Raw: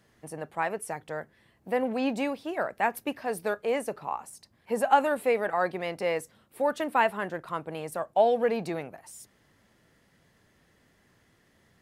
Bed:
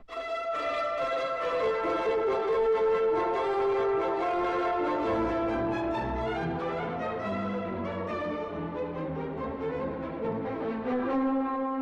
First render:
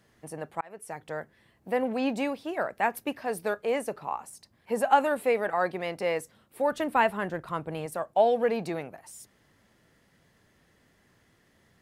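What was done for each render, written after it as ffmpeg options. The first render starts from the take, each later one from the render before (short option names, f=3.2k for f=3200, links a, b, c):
-filter_complex "[0:a]asettb=1/sr,asplit=3[a][b][c];[a]atrim=end=6.724[d];[b]atrim=start=6.72:end=7.86,asetpts=PTS-STARTPTS,afade=t=in:d=0.004:c=qsin,afade=t=out:st=1.136:d=0.004:c=qsin,lowshelf=f=140:g=11[e];[c]atrim=start=7.856[f];[d][e]acrossfade=d=0.004:c1=hsin:c2=qsin[g];[g][f]acrossfade=d=0.004:c1=qsin:c2=hsin,asplit=2[h][i];[h]atrim=end=0.61,asetpts=PTS-STARTPTS,afade=t=out:st=0.606:d=0.004:c=hsin[j];[i]atrim=start=0.61,asetpts=PTS-STARTPTS,afade=t=in:d=0.47[k];[j][k]concat=n=2:v=0:a=1"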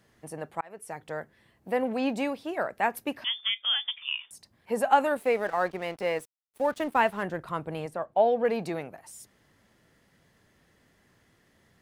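-filter_complex "[0:a]asettb=1/sr,asplit=3[a][b][c];[a]atrim=end=3.244[d];[b]atrim=start=3.24:end=4.31,asetpts=PTS-STARTPTS,afade=t=in:d=0.004:c=qsin,afade=t=out:st=1.066:d=0.004:c=qsin,lowpass=f=3.1k:t=q:w=0.5098,lowpass=f=3.1k:t=q:w=0.6013,lowpass=f=3.1k:t=q:w=0.9,lowpass=f=3.1k:t=q:w=2.563,afreqshift=-3700[e];[c]atrim=start=4.306[f];[d][e]acrossfade=d=0.004:c1=hsin:c2=qsin[g];[g][f]acrossfade=d=0.004:c1=qsin:c2=hsin,asettb=1/sr,asplit=3[h][i][j];[h]atrim=end=5.174[k];[i]atrim=start=5.17:end=7.23,asetpts=PTS-STARTPTS,afade=t=in:d=0.004:c=qsin,afade=t=out:st=2.056:d=0.004:c=qsin,aeval=exprs='sgn(val(0))*max(abs(val(0))-0.00398,0)':c=same[l];[j]atrim=start=7.226[m];[k][l]acrossfade=d=0.004:c1=hsin:c2=qsin[n];[n][m]acrossfade=d=0.004:c1=qsin:c2=hsin,asettb=1/sr,asplit=3[o][p][q];[o]atrim=end=7.884[r];[p]atrim=start=7.88:end=8.45,asetpts=PTS-STARTPTS,afade=t=in:d=0.004:c=qsin,afade=t=out:st=0.566:d=0.004:c=qsin,aemphasis=mode=reproduction:type=75kf[s];[q]atrim=start=8.446[t];[r][s]acrossfade=d=0.004:c1=hsin:c2=qsin[u];[u][t]acrossfade=d=0.004:c1=qsin:c2=hsin"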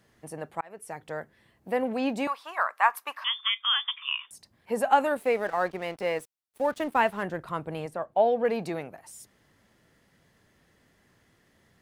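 -filter_complex "[0:a]asettb=1/sr,asplit=3[a][b][c];[a]atrim=end=2.274[d];[b]atrim=start=2.27:end=4.27,asetpts=PTS-STARTPTS,afade=t=in:d=0.004:c=qsin,afade=t=out:st=1.996:d=0.004:c=qsin,highpass=f=1.1k:t=q:w=5.8[e];[c]atrim=start=4.266[f];[d][e]acrossfade=d=0.004:c1=hsin:c2=qsin[g];[g][f]acrossfade=d=0.004:c1=qsin:c2=hsin"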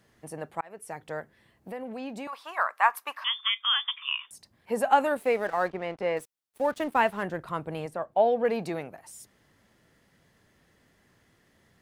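-filter_complex "[0:a]asettb=1/sr,asplit=3[a][b][c];[a]atrim=end=1.204[d];[b]atrim=start=1.2:end=2.33,asetpts=PTS-STARTPTS,afade=t=in:d=0.004:c=qsin,afade=t=out:st=1.126:d=0.004:c=qsin,acompressor=threshold=-38dB:ratio=2.5:attack=3.2:release=140:knee=1:detection=peak[e];[c]atrim=start=2.326[f];[d][e]acrossfade=d=0.004:c1=hsin:c2=qsin[g];[g][f]acrossfade=d=0.004:c1=qsin:c2=hsin,asettb=1/sr,asplit=3[h][i][j];[h]atrim=end=5.704[k];[i]atrim=start=5.7:end=6.17,asetpts=PTS-STARTPTS,afade=t=in:d=0.004:c=qsin,afade=t=out:st=0.466:d=0.004:c=qsin,aemphasis=mode=reproduction:type=75fm[l];[j]atrim=start=6.166[m];[k][l]acrossfade=d=0.004:c1=hsin:c2=qsin[n];[n][m]acrossfade=d=0.004:c1=qsin:c2=hsin"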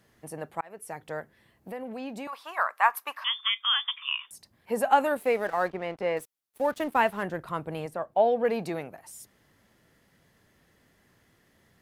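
-af "equalizer=f=12k:t=o:w=0.24:g=6.5"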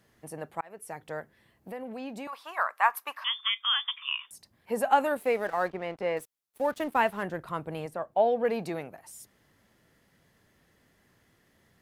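-af "volume=-1.5dB"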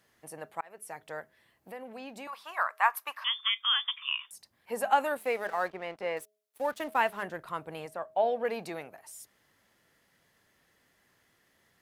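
-af "lowshelf=f=420:g=-10,bandreject=f=211.4:t=h:w=4,bandreject=f=422.8:t=h:w=4,bandreject=f=634.2:t=h:w=4"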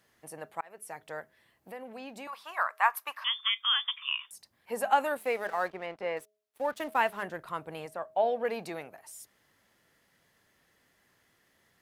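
-filter_complex "[0:a]asettb=1/sr,asplit=3[a][b][c];[a]atrim=end=5.864[d];[b]atrim=start=5.86:end=6.77,asetpts=PTS-STARTPTS,afade=t=in:d=0.004:c=qsin,afade=t=out:st=0.906:d=0.004:c=qsin,highshelf=f=5.4k:g=-7[e];[c]atrim=start=6.766[f];[d][e]acrossfade=d=0.004:c1=hsin:c2=qsin[g];[g][f]acrossfade=d=0.004:c1=qsin:c2=hsin"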